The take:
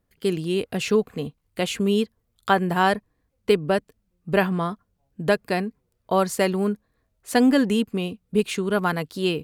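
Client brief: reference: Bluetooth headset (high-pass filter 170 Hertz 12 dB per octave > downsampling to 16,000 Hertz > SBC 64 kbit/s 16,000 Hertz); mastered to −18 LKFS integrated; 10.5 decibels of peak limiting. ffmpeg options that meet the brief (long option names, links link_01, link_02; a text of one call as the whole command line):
ffmpeg -i in.wav -af "alimiter=limit=-16dB:level=0:latency=1,highpass=170,aresample=16000,aresample=44100,volume=10.5dB" -ar 16000 -c:a sbc -b:a 64k out.sbc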